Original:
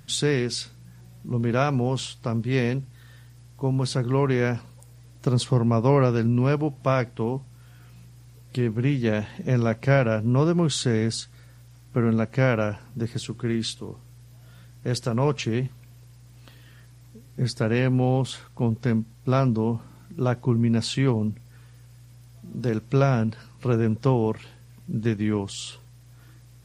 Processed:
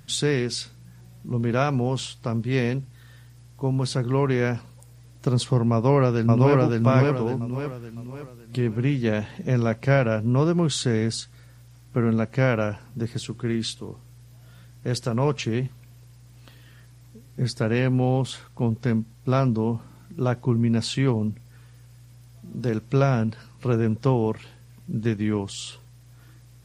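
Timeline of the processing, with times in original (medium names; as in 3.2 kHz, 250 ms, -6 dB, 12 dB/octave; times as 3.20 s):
5.72–6.60 s: echo throw 560 ms, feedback 40%, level -0.5 dB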